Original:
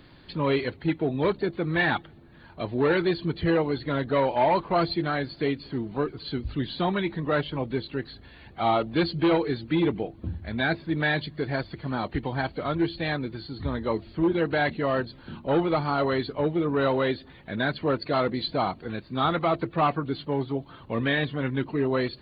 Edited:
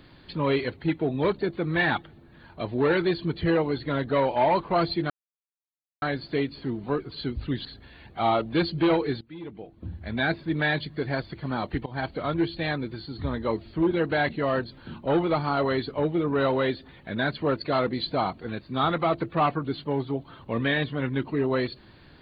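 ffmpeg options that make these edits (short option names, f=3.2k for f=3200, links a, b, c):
-filter_complex "[0:a]asplit=5[a][b][c][d][e];[a]atrim=end=5.1,asetpts=PTS-STARTPTS,afade=t=out:st=5.096:d=0.004:c=hsin,apad=pad_dur=0.92[f];[b]atrim=start=5.1:end=6.732,asetpts=PTS-STARTPTS,afade=t=in:d=0.004:c=hsin[g];[c]atrim=start=8.058:end=9.62,asetpts=PTS-STARTPTS,afade=t=out:st=1.558:d=0.004:c=hsin:silence=0.112202[h];[d]atrim=start=9.62:end=12.27,asetpts=PTS-STARTPTS,afade=t=in:d=0.88:c=qua:silence=0.112202,afade=t=out:st=2.646:d=0.004:c=hsin:silence=0.1[i];[e]atrim=start=12.27,asetpts=PTS-STARTPTS,afade=t=in:d=0.26:c=qsin:silence=0.1[j];[f][g]concat=n=2:v=0:a=1[k];[h][i][j]concat=n=3:v=0:a=1[l];[k][l]acrossfade=d=0.004:c1=hsin:c2=hsin"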